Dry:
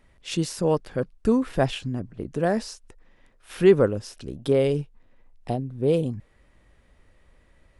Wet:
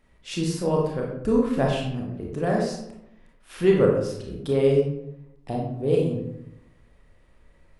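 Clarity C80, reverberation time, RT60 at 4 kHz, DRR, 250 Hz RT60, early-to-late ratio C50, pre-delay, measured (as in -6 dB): 6.0 dB, 0.80 s, 0.45 s, -2.0 dB, 1.0 s, 2.5 dB, 25 ms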